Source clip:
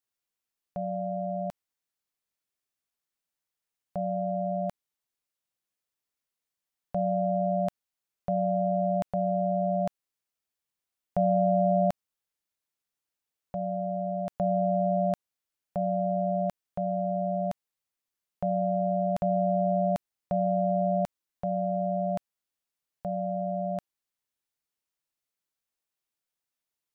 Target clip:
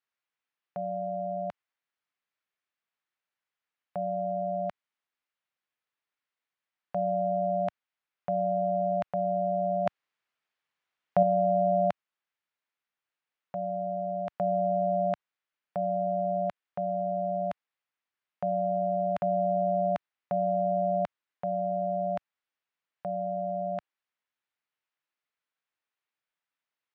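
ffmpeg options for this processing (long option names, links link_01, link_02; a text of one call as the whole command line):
ffmpeg -i in.wav -filter_complex "[0:a]highpass=100,lowpass=2000,tiltshelf=frequency=910:gain=-8,asettb=1/sr,asplit=3[link_01][link_02][link_03];[link_01]atrim=end=9.864[link_04];[link_02]atrim=start=9.86:end=11.23,asetpts=PTS-STARTPTS,afade=type=in:duration=0.004:curve=qsin,afade=type=out:start_time=1.366:duration=0.004:curve=qsin,acontrast=26[link_05];[link_03]atrim=start=11.226[link_06];[link_04][link_05]acrossfade=duration=0.004:curve1=hsin:curve2=qsin[link_07];[link_07][link_06]acrossfade=duration=0.004:curve1=qsin:curve2=hsin,volume=2.5dB" out.wav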